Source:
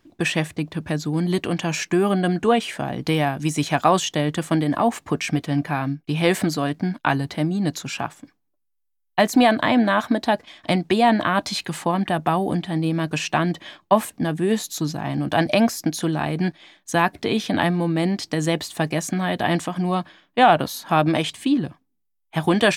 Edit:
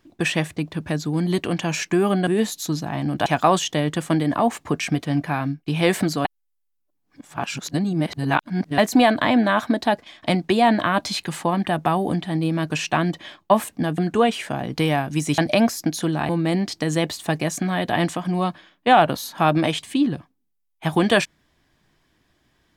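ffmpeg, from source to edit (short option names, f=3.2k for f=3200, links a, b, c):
-filter_complex "[0:a]asplit=8[a][b][c][d][e][f][g][h];[a]atrim=end=2.272[i];[b]atrim=start=14.388:end=15.382[j];[c]atrim=start=3.668:end=6.662[k];[d]atrim=start=6.658:end=9.192,asetpts=PTS-STARTPTS,areverse[l];[e]atrim=start=9.188:end=14.392[m];[f]atrim=start=2.268:end=3.672[n];[g]atrim=start=15.378:end=16.292[o];[h]atrim=start=17.798[p];[i][j]acrossfade=d=0.004:c1=hsin:c2=hsin[q];[q][k]acrossfade=d=0.004:c1=hsin:c2=hsin[r];[r][l]acrossfade=d=0.004:c1=hsin:c2=hsin[s];[s][m]acrossfade=d=0.004:c1=hsin:c2=hsin[t];[t][n]acrossfade=d=0.004:c1=hsin:c2=hsin[u];[u][o]acrossfade=d=0.004:c1=hsin:c2=hsin[v];[v][p]acrossfade=d=0.004:c1=hsin:c2=hsin"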